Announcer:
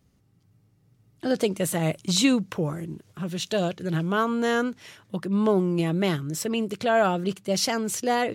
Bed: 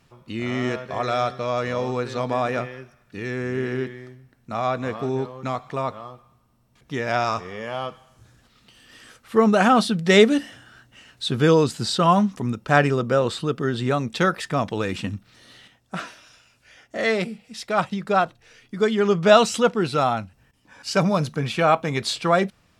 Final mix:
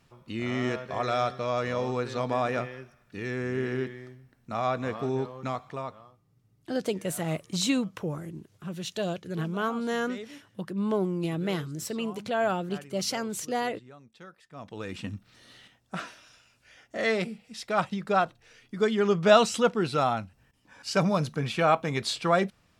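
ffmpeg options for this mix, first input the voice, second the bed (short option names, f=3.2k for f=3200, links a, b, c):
-filter_complex "[0:a]adelay=5450,volume=-5.5dB[a];[1:a]volume=19.5dB,afade=t=out:st=5.41:d=0.82:silence=0.0630957,afade=t=in:st=14.5:d=0.83:silence=0.0668344[b];[a][b]amix=inputs=2:normalize=0"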